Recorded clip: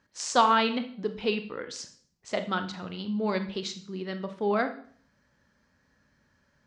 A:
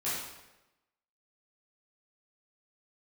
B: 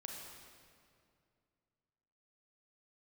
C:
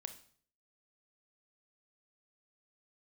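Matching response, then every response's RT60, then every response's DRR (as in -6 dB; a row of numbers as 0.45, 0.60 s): C; 1.0, 2.3, 0.50 s; -11.0, -0.5, 8.0 dB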